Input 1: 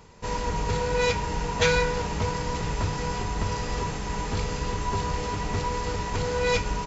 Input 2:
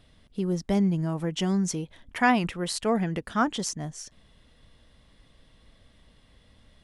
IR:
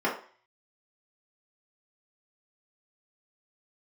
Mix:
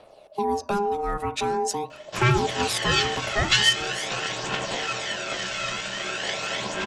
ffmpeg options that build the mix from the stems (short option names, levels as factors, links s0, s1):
-filter_complex "[0:a]highshelf=f=1700:t=q:w=3:g=10.5,adelay=1900,volume=0.422,asplit=2[s0][s1];[s1]volume=0.422[s2];[1:a]acontrast=36,volume=0.841,asplit=2[s3][s4];[s4]volume=0.1[s5];[2:a]atrim=start_sample=2205[s6];[s2][s5]amix=inputs=2:normalize=0[s7];[s7][s6]afir=irnorm=-1:irlink=0[s8];[s0][s3][s8]amix=inputs=3:normalize=0,aphaser=in_gain=1:out_gain=1:delay=1.6:decay=0.55:speed=0.44:type=triangular,aeval=exprs='val(0)*sin(2*PI*610*n/s)':c=same,acrossover=split=320|3000[s9][s10][s11];[s10]acompressor=threshold=0.0708:ratio=6[s12];[s9][s12][s11]amix=inputs=3:normalize=0"